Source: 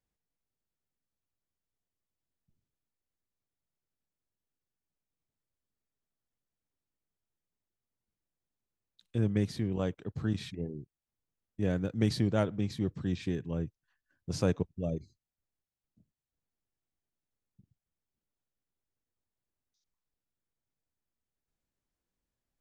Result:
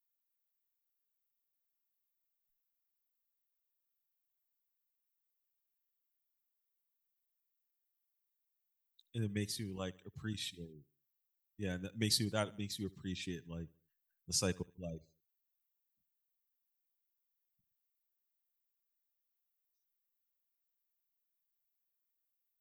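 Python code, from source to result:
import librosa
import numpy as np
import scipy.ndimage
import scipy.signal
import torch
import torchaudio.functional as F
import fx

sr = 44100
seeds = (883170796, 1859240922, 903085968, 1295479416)

y = fx.bin_expand(x, sr, power=1.5)
y = scipy.signal.lfilter([1.0, -0.9], [1.0], y)
y = fx.echo_feedback(y, sr, ms=75, feedback_pct=37, wet_db=-22.5)
y = F.gain(torch.from_numpy(y), 12.0).numpy()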